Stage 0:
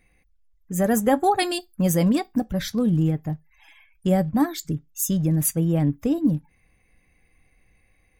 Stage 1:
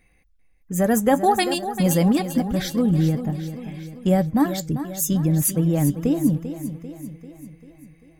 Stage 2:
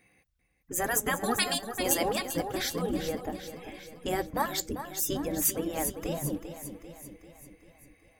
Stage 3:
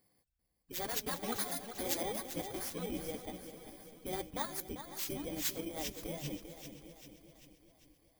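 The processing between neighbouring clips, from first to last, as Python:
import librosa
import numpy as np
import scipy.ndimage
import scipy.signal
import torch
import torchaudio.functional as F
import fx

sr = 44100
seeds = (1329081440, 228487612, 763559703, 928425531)

y1 = fx.echo_feedback(x, sr, ms=393, feedback_pct=54, wet_db=-11)
y1 = y1 * 10.0 ** (1.5 / 20.0)
y2 = fx.spec_gate(y1, sr, threshold_db=-10, keep='weak')
y3 = fx.bit_reversed(y2, sr, seeds[0], block=16)
y3 = fx.echo_feedback(y3, sr, ms=523, feedback_pct=34, wet_db=-16)
y3 = y3 * 10.0 ** (-9.0 / 20.0)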